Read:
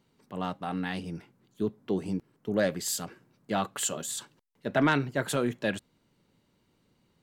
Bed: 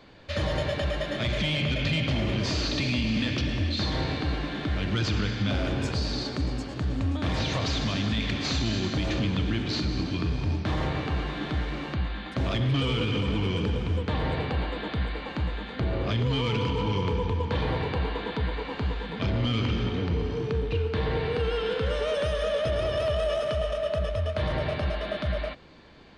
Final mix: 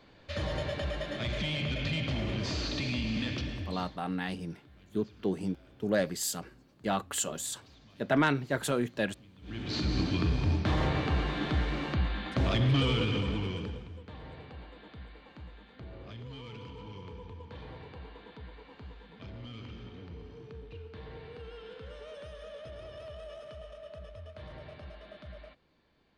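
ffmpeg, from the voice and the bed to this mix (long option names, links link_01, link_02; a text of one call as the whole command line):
ffmpeg -i stem1.wav -i stem2.wav -filter_complex "[0:a]adelay=3350,volume=-1.5dB[link_01];[1:a]volume=23.5dB,afade=type=out:start_time=3.3:duration=0.68:silence=0.0630957,afade=type=in:start_time=9.41:duration=0.56:silence=0.0334965,afade=type=out:start_time=12.81:duration=1.09:silence=0.125893[link_02];[link_01][link_02]amix=inputs=2:normalize=0" out.wav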